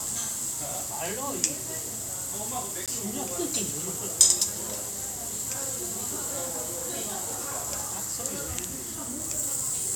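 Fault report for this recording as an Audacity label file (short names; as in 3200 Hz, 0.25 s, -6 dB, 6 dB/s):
2.860000	2.880000	gap 17 ms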